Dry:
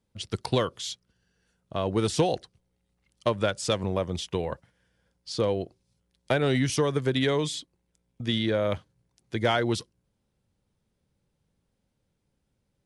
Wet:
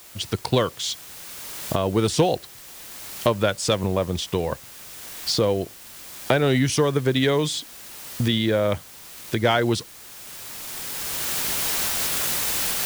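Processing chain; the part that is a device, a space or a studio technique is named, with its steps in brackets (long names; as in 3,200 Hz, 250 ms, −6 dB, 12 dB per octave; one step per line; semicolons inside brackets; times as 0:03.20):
cheap recorder with automatic gain (white noise bed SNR 21 dB; camcorder AGC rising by 13 dB per second)
level +4.5 dB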